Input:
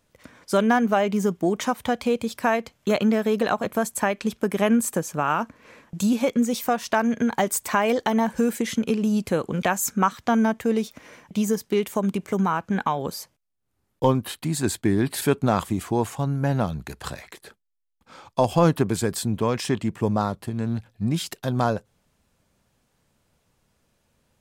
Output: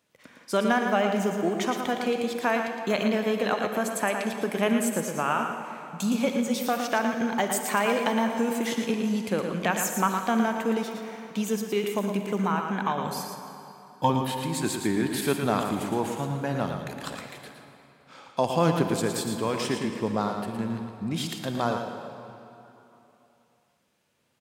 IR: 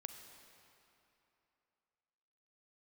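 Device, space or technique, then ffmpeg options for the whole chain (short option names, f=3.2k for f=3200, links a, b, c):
PA in a hall: -filter_complex "[0:a]asettb=1/sr,asplit=3[a][b][c];[a]atrim=end=13.054[d];[b]atrim=start=13.05:end=14.1,asetpts=PTS-STARTPTS,afade=t=in:d=0.004:c=qsin,afade=t=out:st=1.046:d=0.004:c=qsin,aecho=1:1:1.2:0.95,atrim=end_sample=46305[e];[c]atrim=start=14.096[f];[d][e]acrossfade=d=0.004:c1=hsin:c2=qsin[g];[g][f]acrossfade=d=0.004:c1=qsin:c2=hsin,highpass=150,equalizer=f=2.7k:t=o:w=1.5:g=4,aecho=1:1:114:0.447[h];[1:a]atrim=start_sample=2205[i];[h][i]afir=irnorm=-1:irlink=0"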